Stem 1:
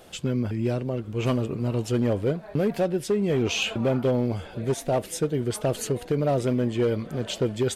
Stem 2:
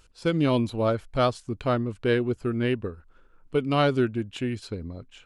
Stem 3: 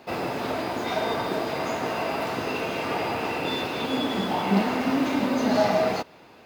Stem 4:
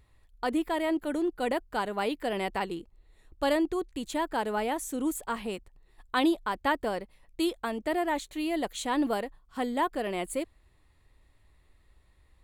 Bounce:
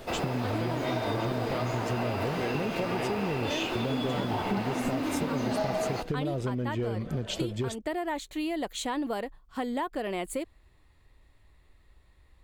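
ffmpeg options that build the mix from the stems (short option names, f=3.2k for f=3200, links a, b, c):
-filter_complex "[0:a]lowshelf=f=110:g=11.5,volume=2dB[a];[1:a]adelay=350,volume=-1.5dB[b];[2:a]volume=-1dB[c];[3:a]volume=2.5dB[d];[a][b][d]amix=inputs=3:normalize=0,equalizer=f=10k:w=1.5:g=-4.5,acompressor=threshold=-27dB:ratio=2.5,volume=0dB[e];[c][e]amix=inputs=2:normalize=0,acompressor=threshold=-27dB:ratio=4"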